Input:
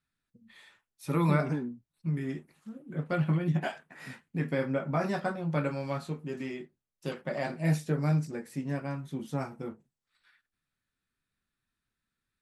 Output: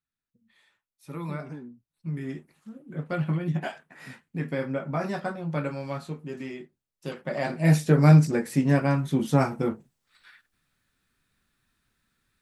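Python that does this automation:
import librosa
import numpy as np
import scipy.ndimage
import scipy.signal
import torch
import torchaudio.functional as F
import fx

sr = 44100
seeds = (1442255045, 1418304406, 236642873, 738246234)

y = fx.gain(x, sr, db=fx.line((1.5, -8.5), (2.26, 0.5), (7.09, 0.5), (8.1, 12.0)))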